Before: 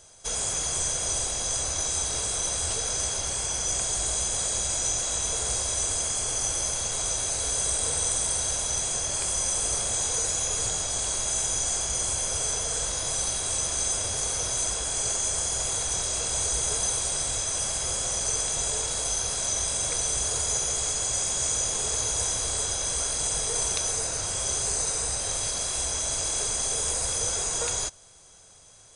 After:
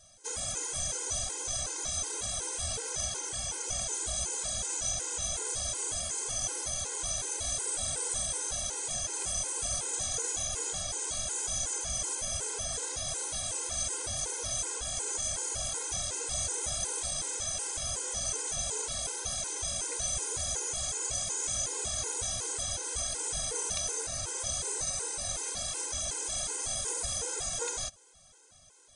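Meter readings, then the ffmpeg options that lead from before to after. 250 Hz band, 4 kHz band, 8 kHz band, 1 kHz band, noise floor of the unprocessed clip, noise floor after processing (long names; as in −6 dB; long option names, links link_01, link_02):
−6.5 dB, −6.5 dB, −6.5 dB, −6.5 dB, −31 dBFS, −38 dBFS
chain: -af "afftfilt=real='re*gt(sin(2*PI*2.7*pts/sr)*(1-2*mod(floor(b*sr/1024/270),2)),0)':imag='im*gt(sin(2*PI*2.7*pts/sr)*(1-2*mod(floor(b*sr/1024/270),2)),0)':win_size=1024:overlap=0.75,volume=-3dB"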